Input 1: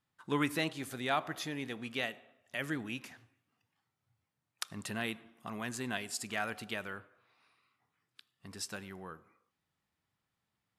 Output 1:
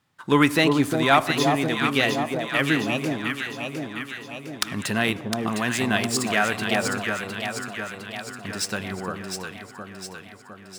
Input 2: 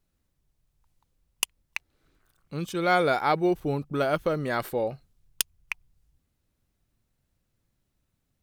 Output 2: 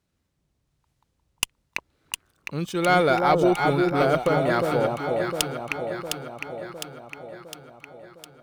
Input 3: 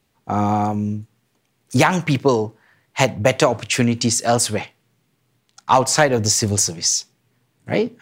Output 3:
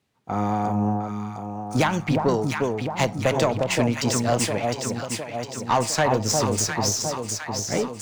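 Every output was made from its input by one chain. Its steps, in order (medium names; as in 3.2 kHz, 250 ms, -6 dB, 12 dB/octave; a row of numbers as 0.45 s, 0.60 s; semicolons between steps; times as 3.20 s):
median filter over 3 samples; high-pass 62 Hz; on a send: echo whose repeats swap between lows and highs 354 ms, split 1 kHz, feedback 75%, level -3 dB; on the sum: valve stage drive 7 dB, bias 0.45; normalise loudness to -24 LUFS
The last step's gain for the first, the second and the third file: +15.5 dB, +5.0 dB, -4.0 dB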